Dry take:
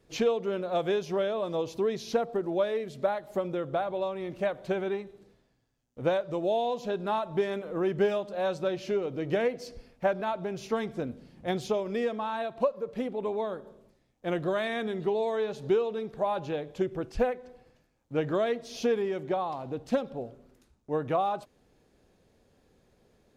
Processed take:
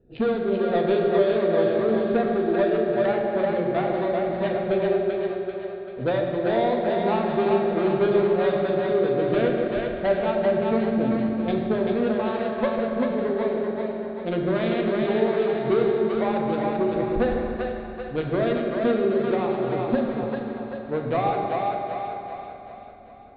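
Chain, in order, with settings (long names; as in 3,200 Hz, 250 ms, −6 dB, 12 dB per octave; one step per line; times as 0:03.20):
adaptive Wiener filter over 41 samples
soft clipping −24.5 dBFS, distortion −14 dB
Butterworth low-pass 4,300 Hz 72 dB per octave
echo with a time of its own for lows and highs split 530 Hz, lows 145 ms, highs 389 ms, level −3 dB
on a send at −1 dB: convolution reverb RT60 3.3 s, pre-delay 4 ms
on the sum: level +5.5 dB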